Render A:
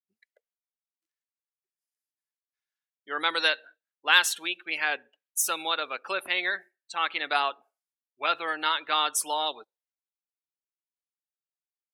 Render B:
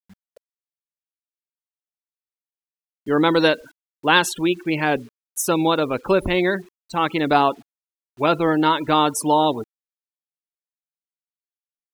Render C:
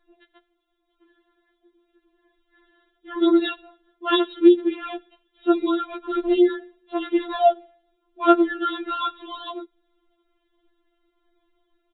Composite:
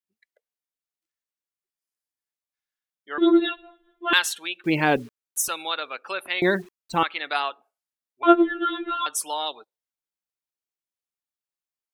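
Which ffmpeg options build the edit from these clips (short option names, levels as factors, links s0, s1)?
-filter_complex "[2:a]asplit=2[s0][s1];[1:a]asplit=2[s2][s3];[0:a]asplit=5[s4][s5][s6][s7][s8];[s4]atrim=end=3.182[s9];[s0]atrim=start=3.178:end=4.132[s10];[s5]atrim=start=4.128:end=4.642[s11];[s2]atrim=start=4.638:end=5.482[s12];[s6]atrim=start=5.478:end=6.422[s13];[s3]atrim=start=6.418:end=7.032[s14];[s7]atrim=start=7.028:end=8.232[s15];[s1]atrim=start=8.228:end=9.062[s16];[s8]atrim=start=9.058[s17];[s9][s10]acrossfade=d=0.004:c1=hsin:c2=hsin[s18];[s18][s11]acrossfade=d=0.004:c1=hsin:c2=hsin[s19];[s19][s12]acrossfade=d=0.004:c1=hsin:c2=hsin[s20];[s20][s13]acrossfade=d=0.004:c1=hsin:c2=hsin[s21];[s21][s14]acrossfade=d=0.004:c1=hsin:c2=hsin[s22];[s22][s15]acrossfade=d=0.004:c1=hsin:c2=hsin[s23];[s23][s16]acrossfade=d=0.004:c1=hsin:c2=hsin[s24];[s24][s17]acrossfade=d=0.004:c1=hsin:c2=hsin"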